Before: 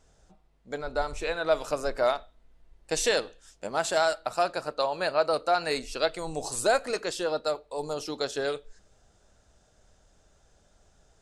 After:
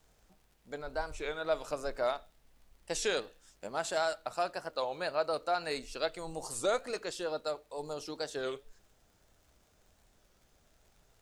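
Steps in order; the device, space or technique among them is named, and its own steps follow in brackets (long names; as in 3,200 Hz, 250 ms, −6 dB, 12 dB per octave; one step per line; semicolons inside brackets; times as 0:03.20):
warped LP (wow of a warped record 33 1/3 rpm, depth 160 cents; surface crackle 77 per second −48 dBFS; pink noise bed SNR 35 dB)
level −7 dB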